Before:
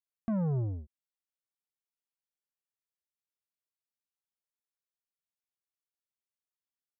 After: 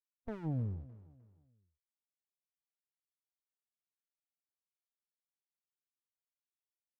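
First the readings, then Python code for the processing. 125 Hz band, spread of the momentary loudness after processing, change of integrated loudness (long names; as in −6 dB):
−6.0 dB, 18 LU, −7.0 dB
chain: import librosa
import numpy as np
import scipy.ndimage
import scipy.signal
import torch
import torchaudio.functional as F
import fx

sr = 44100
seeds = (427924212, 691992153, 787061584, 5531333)

y = fx.noise_reduce_blind(x, sr, reduce_db=20)
y = fx.echo_feedback(y, sr, ms=305, feedback_pct=33, wet_db=-18.5)
y = fx.running_max(y, sr, window=65)
y = y * 10.0 ** (-3.0 / 20.0)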